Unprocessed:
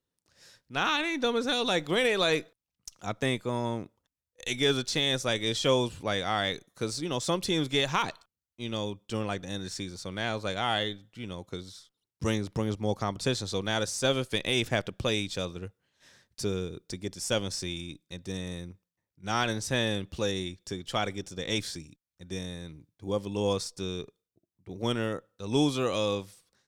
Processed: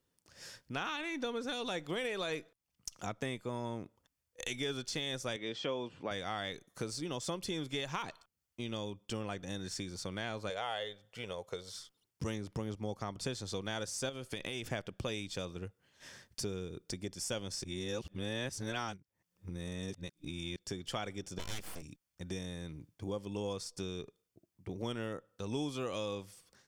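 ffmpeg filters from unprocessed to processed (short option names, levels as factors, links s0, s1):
-filter_complex "[0:a]asettb=1/sr,asplit=3[s0][s1][s2];[s0]atrim=end=5.364[s3];[s1]atrim=start=5.36:end=6.11,asetpts=PTS-STARTPTS,afade=t=in:d=0.004:c=qsin,afade=t=out:st=0.746:d=0.004:c=qsin,highpass=180,lowpass=3200[s4];[s2]atrim=start=6.106[s5];[s3][s4]acrossfade=d=0.004:c1=hsin:c2=qsin[s6];[s6][s5]acrossfade=d=0.004:c1=qsin:c2=hsin,asettb=1/sr,asplit=3[s7][s8][s9];[s7]atrim=end=10.504[s10];[s8]atrim=start=10.5:end=11.74,asetpts=PTS-STARTPTS,afade=t=in:d=0.004:c=qsin,afade=t=out:st=1.236:d=0.004:c=qsin,lowshelf=f=380:t=q:w=3:g=-7.5[s11];[s9]atrim=start=11.736[s12];[s10][s11]acrossfade=d=0.004:c1=hsin:c2=qsin[s13];[s13][s12]acrossfade=d=0.004:c1=qsin:c2=hsin,asettb=1/sr,asplit=3[s14][s15][s16];[s14]atrim=end=14.094[s17];[s15]atrim=start=14.09:end=14.65,asetpts=PTS-STARTPTS,afade=t=in:d=0.004:c=qsin,afade=t=out:st=0.556:d=0.004:c=qsin,acompressor=threshold=0.0316:ratio=6:attack=3.2:release=140:knee=1:detection=peak[s18];[s16]atrim=start=14.646[s19];[s17][s18]acrossfade=d=0.004:c1=hsin:c2=qsin[s20];[s20][s19]acrossfade=d=0.004:c1=qsin:c2=hsin,asplit=3[s21][s22][s23];[s21]afade=t=out:st=21.38:d=0.02[s24];[s22]aeval=exprs='abs(val(0))':c=same,afade=t=in:st=21.38:d=0.02,afade=t=out:st=21.81:d=0.02[s25];[s23]afade=t=in:st=21.81:d=0.02[s26];[s24][s25][s26]amix=inputs=3:normalize=0,asplit=3[s27][s28][s29];[s27]atrim=end=17.642[s30];[s28]atrim=start=17.638:end=20.562,asetpts=PTS-STARTPTS,areverse[s31];[s29]atrim=start=20.558[s32];[s30][s31]acrossfade=d=0.004:c1=hsin:c2=hsin[s33];[s33][s32]acrossfade=d=0.004:c1=hsin:c2=hsin,acompressor=threshold=0.00501:ratio=3,bandreject=f=3900:w=10,volume=1.88"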